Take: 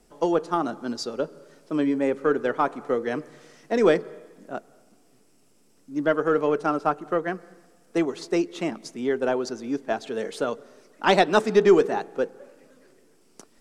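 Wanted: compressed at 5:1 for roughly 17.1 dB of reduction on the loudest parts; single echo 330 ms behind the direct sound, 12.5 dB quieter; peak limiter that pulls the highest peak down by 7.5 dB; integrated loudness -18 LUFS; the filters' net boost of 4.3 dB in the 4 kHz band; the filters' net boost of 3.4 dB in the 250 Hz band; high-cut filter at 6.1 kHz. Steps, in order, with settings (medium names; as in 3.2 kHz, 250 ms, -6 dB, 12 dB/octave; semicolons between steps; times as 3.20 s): low-pass 6.1 kHz; peaking EQ 250 Hz +4.5 dB; peaking EQ 4 kHz +6 dB; compression 5:1, threshold -30 dBFS; peak limiter -25 dBFS; delay 330 ms -12.5 dB; trim +18 dB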